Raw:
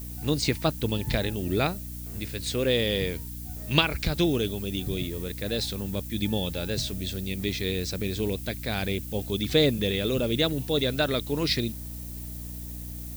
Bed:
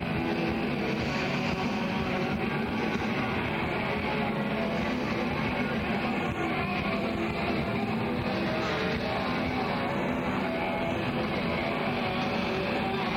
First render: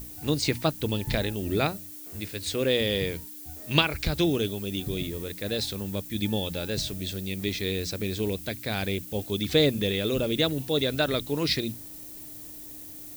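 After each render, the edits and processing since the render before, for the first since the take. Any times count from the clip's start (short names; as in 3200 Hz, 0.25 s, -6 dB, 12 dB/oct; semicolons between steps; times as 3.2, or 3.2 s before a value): notches 60/120/180/240 Hz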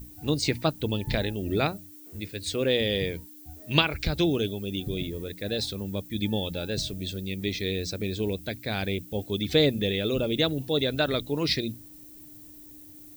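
denoiser 9 dB, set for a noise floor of -43 dBFS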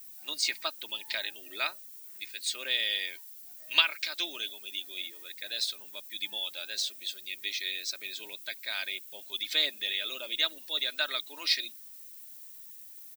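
HPF 1500 Hz 12 dB/oct; comb 3.2 ms, depth 49%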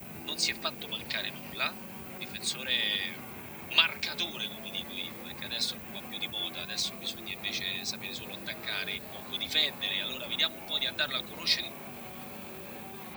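add bed -16 dB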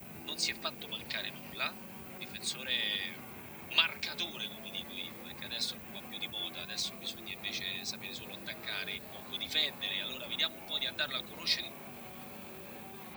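gain -4 dB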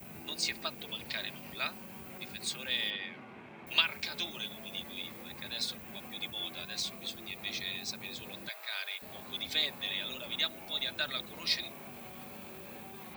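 2.9–3.67 BPF 140–2800 Hz; 8.49–9.02 HPF 610 Hz 24 dB/oct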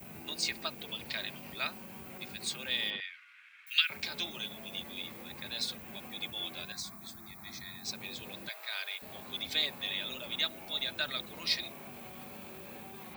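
3–3.9 steep high-pass 1400 Hz 48 dB/oct; 6.72–7.85 fixed phaser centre 1200 Hz, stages 4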